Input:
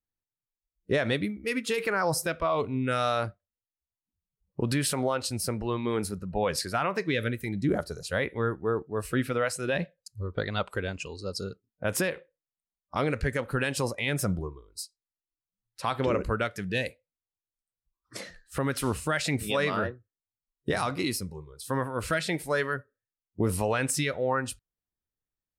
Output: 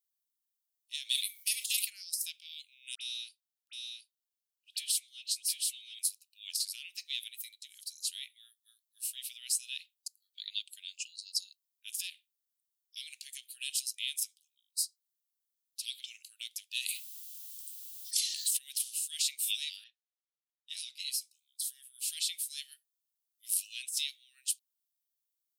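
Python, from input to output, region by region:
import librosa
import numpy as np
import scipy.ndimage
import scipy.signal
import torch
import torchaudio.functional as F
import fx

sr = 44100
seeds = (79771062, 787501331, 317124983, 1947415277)

y = fx.chain(x, sr, fx.highpass(hz=430.0, slope=12),
    fx.high_shelf(hz=4400.0, db=12.0),
    fx.sustainer(db_per_s=57.0), at=(1.09, 1.85))
y = fx.chain(y, sr, fx.high_shelf(hz=5700.0, db=-8.0),
    fx.dispersion(late='highs', ms=61.0, hz=1700.0),
    fx.echo_single(ms=722, db=-3.5), at=(2.95, 5.99))
y = fx.chain(y, sr, fx.highpass(hz=970.0, slope=12),
    fx.notch(hz=1600.0, q=10.0),
    fx.env_flatten(amount_pct=100), at=(16.8, 18.57))
y = fx.chain(y, sr, fx.env_lowpass(base_hz=2900.0, full_db=-25.5),
    fx.high_shelf(hz=4400.0, db=-10.0),
    fx.comb(ms=7.1, depth=0.62), at=(19.84, 21.21))
y = scipy.signal.sosfilt(scipy.signal.butter(8, 2900.0, 'highpass', fs=sr, output='sos'), y)
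y = fx.high_shelf(y, sr, hz=8800.0, db=11.5)
y = fx.over_compress(y, sr, threshold_db=-29.0, ratio=-0.5)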